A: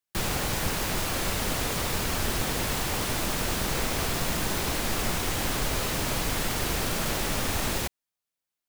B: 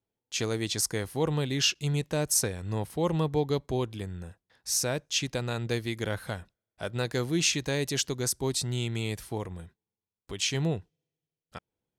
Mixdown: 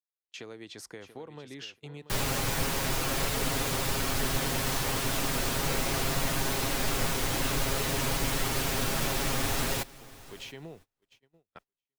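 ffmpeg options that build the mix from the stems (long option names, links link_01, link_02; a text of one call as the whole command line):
ffmpeg -i stem1.wav -i stem2.wav -filter_complex "[0:a]aecho=1:1:7.4:0.72,adelay=1950,volume=-3dB,asplit=2[link_01][link_02];[link_02]volume=-21dB[link_03];[1:a]acrossover=split=220 3500:gain=0.251 1 0.224[link_04][link_05][link_06];[link_04][link_05][link_06]amix=inputs=3:normalize=0,acompressor=threshold=-34dB:ratio=12,volume=-5.5dB,asplit=2[link_07][link_08];[link_08]volume=-12dB[link_09];[link_03][link_09]amix=inputs=2:normalize=0,aecho=0:1:685|1370|2055:1|0.21|0.0441[link_10];[link_01][link_07][link_10]amix=inputs=3:normalize=0,agate=range=-28dB:threshold=-52dB:ratio=16:detection=peak" out.wav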